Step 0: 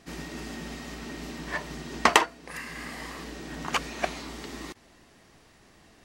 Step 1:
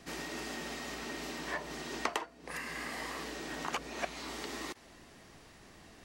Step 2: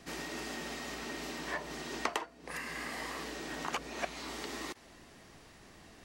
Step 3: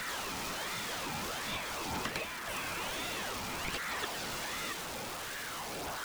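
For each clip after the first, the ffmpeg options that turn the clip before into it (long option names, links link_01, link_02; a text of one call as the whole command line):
ffmpeg -i in.wav -filter_complex "[0:a]acrossover=split=320|930[link_01][link_02][link_03];[link_01]acompressor=threshold=-54dB:ratio=4[link_04];[link_02]acompressor=threshold=-40dB:ratio=4[link_05];[link_03]acompressor=threshold=-40dB:ratio=4[link_06];[link_04][link_05][link_06]amix=inputs=3:normalize=0,volume=1dB" out.wav
ffmpeg -i in.wav -af anull out.wav
ffmpeg -i in.wav -af "aeval=exprs='val(0)+0.5*0.0316*sgn(val(0))':channel_layout=same,aphaser=in_gain=1:out_gain=1:delay=3.4:decay=0.35:speed=0.51:type=triangular,aeval=exprs='val(0)*sin(2*PI*1100*n/s+1100*0.55/1.3*sin(2*PI*1.3*n/s))':channel_layout=same,volume=-3dB" out.wav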